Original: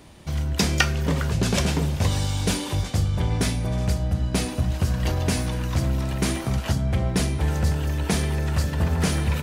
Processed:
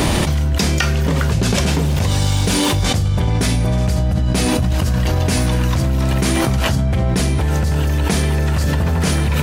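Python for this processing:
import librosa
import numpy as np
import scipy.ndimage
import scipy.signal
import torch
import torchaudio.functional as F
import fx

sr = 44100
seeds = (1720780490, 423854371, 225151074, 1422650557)

y = fx.dmg_crackle(x, sr, seeds[0], per_s=fx.line((1.68, 80.0), (2.75, 270.0)), level_db=-31.0, at=(1.68, 2.75), fade=0.02)
y = fx.env_flatten(y, sr, amount_pct=100)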